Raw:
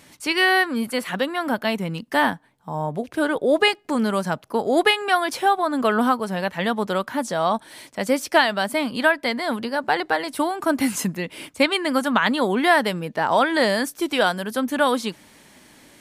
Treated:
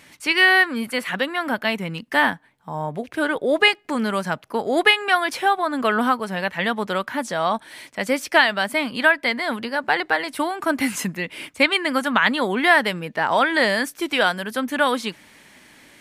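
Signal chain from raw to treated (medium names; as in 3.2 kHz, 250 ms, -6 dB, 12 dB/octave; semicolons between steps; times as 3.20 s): peaking EQ 2.1 kHz +7 dB 1.4 oct; trim -2 dB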